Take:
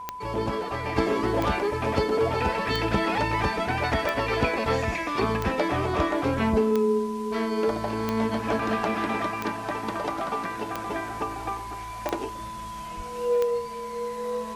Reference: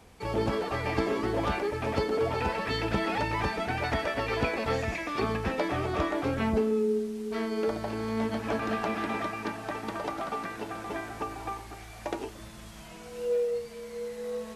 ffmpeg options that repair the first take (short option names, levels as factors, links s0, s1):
-filter_complex "[0:a]adeclick=t=4,bandreject=f=1000:w=30,asplit=3[s0][s1][s2];[s0]afade=t=out:st=12.96:d=0.02[s3];[s1]highpass=f=140:w=0.5412,highpass=f=140:w=1.3066,afade=t=in:st=12.96:d=0.02,afade=t=out:st=13.08:d=0.02[s4];[s2]afade=t=in:st=13.08:d=0.02[s5];[s3][s4][s5]amix=inputs=3:normalize=0,asetnsamples=n=441:p=0,asendcmd='0.96 volume volume -4dB',volume=1"